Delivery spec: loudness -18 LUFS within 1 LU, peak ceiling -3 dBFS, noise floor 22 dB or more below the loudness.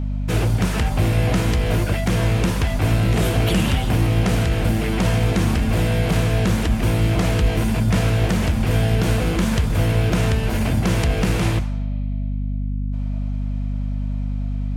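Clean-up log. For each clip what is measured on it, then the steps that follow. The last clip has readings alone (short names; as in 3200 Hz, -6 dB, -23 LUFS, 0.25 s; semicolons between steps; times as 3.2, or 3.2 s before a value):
hum 50 Hz; harmonics up to 250 Hz; hum level -21 dBFS; loudness -20.5 LUFS; peak -7.0 dBFS; loudness target -18.0 LUFS
-> notches 50/100/150/200/250 Hz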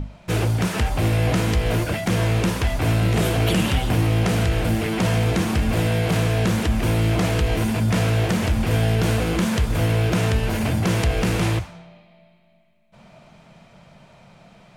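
hum none; loudness -21.0 LUFS; peak -8.5 dBFS; loudness target -18.0 LUFS
-> gain +3 dB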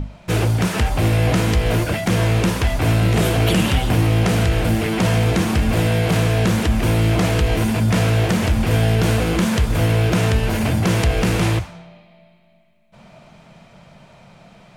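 loudness -18.0 LUFS; peak -5.5 dBFS; noise floor -50 dBFS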